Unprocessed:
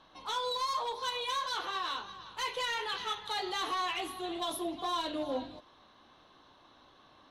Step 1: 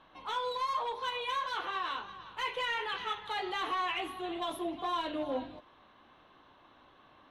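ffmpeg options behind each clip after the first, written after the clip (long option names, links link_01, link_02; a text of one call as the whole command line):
ffmpeg -i in.wav -af "highshelf=frequency=3500:width_type=q:width=1.5:gain=-8.5" out.wav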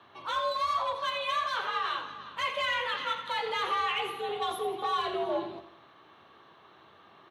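ffmpeg -i in.wav -af "aecho=1:1:84|168|252|336|420:0.282|0.124|0.0546|0.024|0.0106,afreqshift=74,volume=3.5dB" out.wav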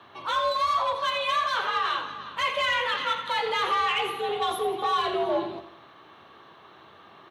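ffmpeg -i in.wav -af "asoftclip=type=tanh:threshold=-20dB,volume=5.5dB" out.wav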